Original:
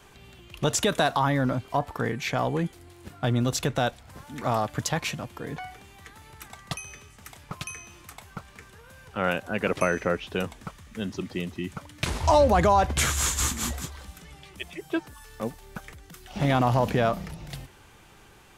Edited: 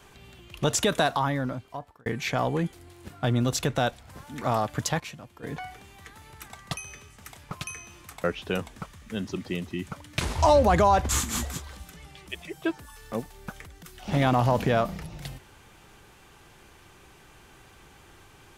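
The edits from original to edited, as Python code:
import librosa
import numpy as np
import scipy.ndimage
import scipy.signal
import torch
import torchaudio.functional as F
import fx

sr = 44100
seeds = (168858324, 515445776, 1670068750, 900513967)

y = fx.edit(x, sr, fx.fade_out_span(start_s=0.98, length_s=1.08),
    fx.clip_gain(start_s=5.0, length_s=0.43, db=-9.5),
    fx.cut(start_s=8.24, length_s=1.85),
    fx.cut(start_s=12.94, length_s=0.43), tone=tone)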